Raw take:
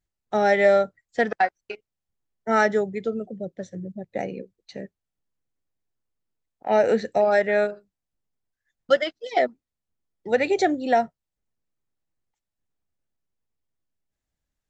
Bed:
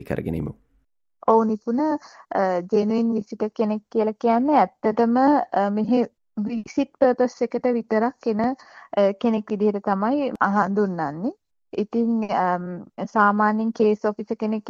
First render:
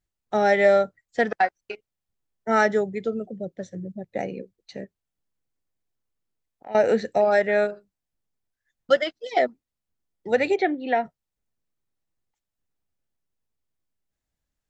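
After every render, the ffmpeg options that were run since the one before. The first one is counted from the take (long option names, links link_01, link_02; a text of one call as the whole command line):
ffmpeg -i in.wav -filter_complex "[0:a]asettb=1/sr,asplit=3[link_01][link_02][link_03];[link_01]atrim=end=4.844[link_04];[link_02]atrim=start=4.84:end=6.75,asetpts=PTS-STARTPTS,afade=type=in:duration=0.004:curve=qsin,afade=type=out:start_time=1.906:duration=0.004:curve=qsin,acompressor=threshold=-45dB:ratio=2:attack=3.2:release=140:knee=1:detection=peak[link_05];[link_03]atrim=start=6.746[link_06];[link_04][link_05]acrossfade=duration=0.004:curve1=hsin:curve2=qsin[link_07];[link_07][link_06]acrossfade=duration=0.004:curve1=qsin:curve2=hsin,asplit=3[link_08][link_09][link_10];[link_08]afade=type=out:start_time=10.55:duration=0.02[link_11];[link_09]highpass=260,equalizer=frequency=600:width_type=q:width=4:gain=-8,equalizer=frequency=1300:width_type=q:width=4:gain=-5,equalizer=frequency=2200:width_type=q:width=4:gain=5,lowpass=frequency=3400:width=0.5412,lowpass=frequency=3400:width=1.3066,afade=type=in:start_time=10.55:duration=0.02,afade=type=out:start_time=11.04:duration=0.02[link_12];[link_10]afade=type=in:start_time=11.04:duration=0.02[link_13];[link_11][link_12][link_13]amix=inputs=3:normalize=0" out.wav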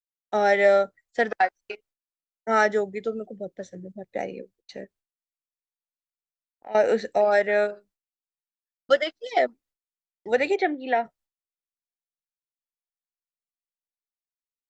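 ffmpeg -i in.wav -af "agate=range=-33dB:threshold=-51dB:ratio=3:detection=peak,equalizer=frequency=130:width=0.88:gain=-9.5" out.wav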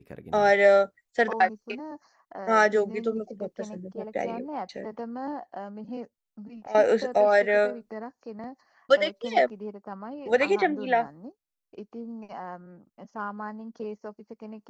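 ffmpeg -i in.wav -i bed.wav -filter_complex "[1:a]volume=-17dB[link_01];[0:a][link_01]amix=inputs=2:normalize=0" out.wav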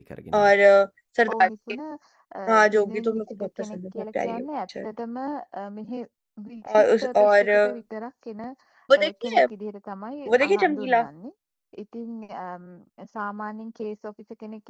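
ffmpeg -i in.wav -af "volume=3dB" out.wav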